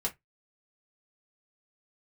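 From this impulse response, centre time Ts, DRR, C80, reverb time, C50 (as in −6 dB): 10 ms, −2.0 dB, 31.5 dB, 0.15 s, 19.5 dB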